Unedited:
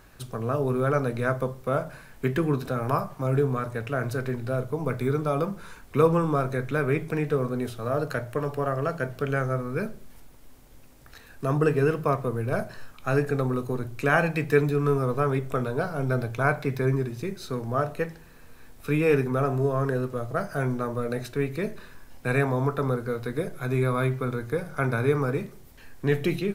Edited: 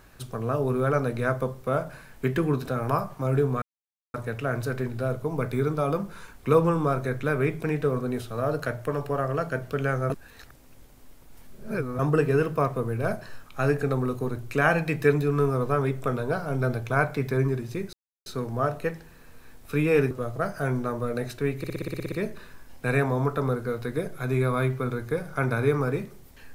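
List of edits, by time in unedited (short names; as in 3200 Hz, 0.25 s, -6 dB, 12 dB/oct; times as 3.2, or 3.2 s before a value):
3.62 insert silence 0.52 s
9.58–11.47 reverse
17.41 insert silence 0.33 s
19.26–20.06 cut
21.53 stutter 0.06 s, 10 plays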